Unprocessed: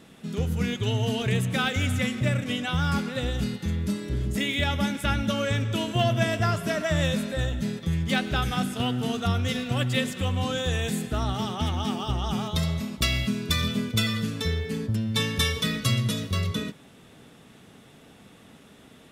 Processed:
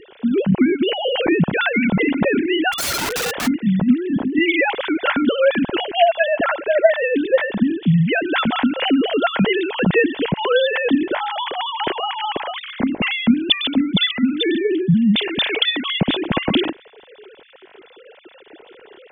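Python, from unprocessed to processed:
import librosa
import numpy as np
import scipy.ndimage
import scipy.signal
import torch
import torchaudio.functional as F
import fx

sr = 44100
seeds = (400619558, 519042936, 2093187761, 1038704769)

y = fx.sine_speech(x, sr)
y = fx.low_shelf(y, sr, hz=260.0, db=8.0)
y = fx.notch(y, sr, hz=1200.0, q=7.1)
y = fx.rider(y, sr, range_db=3, speed_s=0.5)
y = fx.overflow_wrap(y, sr, gain_db=24.0, at=(2.72, 3.46), fade=0.02)
y = y * librosa.db_to_amplitude(6.0)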